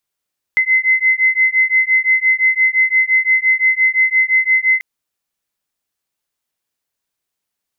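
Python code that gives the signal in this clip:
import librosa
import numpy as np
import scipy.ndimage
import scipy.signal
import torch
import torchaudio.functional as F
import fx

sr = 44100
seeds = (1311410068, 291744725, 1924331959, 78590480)

y = fx.two_tone_beats(sr, length_s=4.24, hz=2050.0, beat_hz=5.8, level_db=-14.0)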